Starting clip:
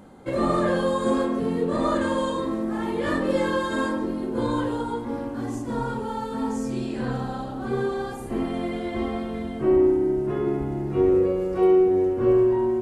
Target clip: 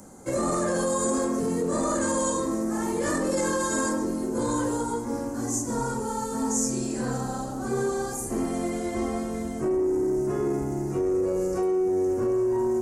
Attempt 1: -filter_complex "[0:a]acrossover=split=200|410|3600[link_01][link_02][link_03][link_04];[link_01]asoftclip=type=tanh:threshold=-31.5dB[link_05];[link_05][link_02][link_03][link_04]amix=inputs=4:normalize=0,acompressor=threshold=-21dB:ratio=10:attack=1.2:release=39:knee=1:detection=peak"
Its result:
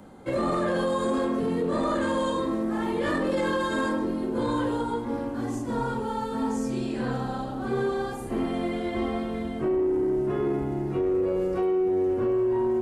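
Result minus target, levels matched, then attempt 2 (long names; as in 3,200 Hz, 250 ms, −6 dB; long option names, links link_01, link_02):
8,000 Hz band −17.5 dB
-filter_complex "[0:a]acrossover=split=200|410|3600[link_01][link_02][link_03][link_04];[link_01]asoftclip=type=tanh:threshold=-31.5dB[link_05];[link_05][link_02][link_03][link_04]amix=inputs=4:normalize=0,acompressor=threshold=-21dB:ratio=10:attack=1.2:release=39:knee=1:detection=peak,highshelf=frequency=4700:width_type=q:width=3:gain=12"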